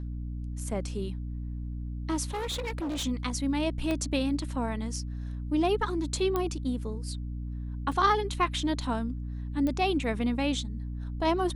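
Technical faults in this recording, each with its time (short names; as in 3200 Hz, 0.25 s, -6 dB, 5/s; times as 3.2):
hum 60 Hz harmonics 5 -35 dBFS
2.25–3.05 clipped -29.5 dBFS
3.91 pop -18 dBFS
6.36 pop -16 dBFS
7.92 gap 3.1 ms
9.67 pop -20 dBFS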